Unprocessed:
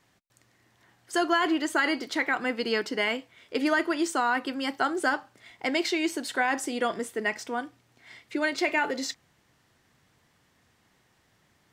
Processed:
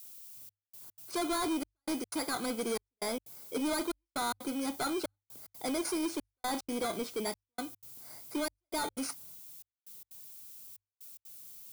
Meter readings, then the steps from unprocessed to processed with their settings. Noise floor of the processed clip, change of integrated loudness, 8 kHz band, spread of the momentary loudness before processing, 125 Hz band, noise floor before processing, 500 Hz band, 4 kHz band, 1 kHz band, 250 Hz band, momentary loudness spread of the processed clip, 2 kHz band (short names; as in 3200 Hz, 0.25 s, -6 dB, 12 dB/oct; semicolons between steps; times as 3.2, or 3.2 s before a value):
under -85 dBFS, -8.5 dB, -0.5 dB, 9 LU, n/a, -67 dBFS, -7.0 dB, -7.0 dB, -9.0 dB, -6.0 dB, 16 LU, -16.0 dB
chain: FFT order left unsorted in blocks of 16 samples; expander -60 dBFS; downsampling 22050 Hz; soft clip -29 dBFS, distortion -9 dB; added noise violet -50 dBFS; notch 1800 Hz, Q 5.3; step gate "xxxxxx...xx.xx" 184 bpm -60 dB; notches 50/100 Hz